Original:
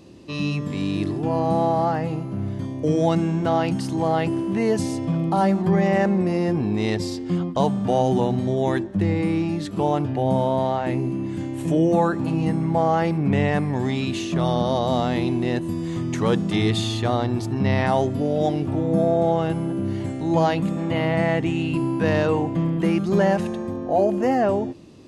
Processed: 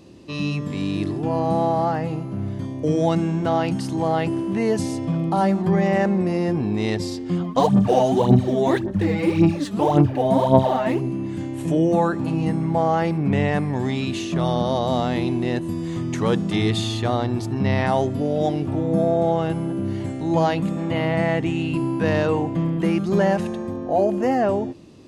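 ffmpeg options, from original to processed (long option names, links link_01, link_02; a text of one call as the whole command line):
ffmpeg -i in.wav -filter_complex "[0:a]asplit=3[link_01][link_02][link_03];[link_01]afade=type=out:start_time=7.43:duration=0.02[link_04];[link_02]aphaser=in_gain=1:out_gain=1:delay=4.8:decay=0.72:speed=1.8:type=sinusoidal,afade=type=in:start_time=7.43:duration=0.02,afade=type=out:start_time=11:duration=0.02[link_05];[link_03]afade=type=in:start_time=11:duration=0.02[link_06];[link_04][link_05][link_06]amix=inputs=3:normalize=0" out.wav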